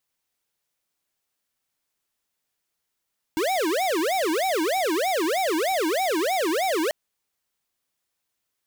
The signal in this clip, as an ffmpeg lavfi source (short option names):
-f lavfi -i "aevalsrc='0.0668*(2*lt(mod((540.5*t-232.5/(2*PI*3.2)*sin(2*PI*3.2*t)),1),0.5)-1)':d=3.54:s=44100"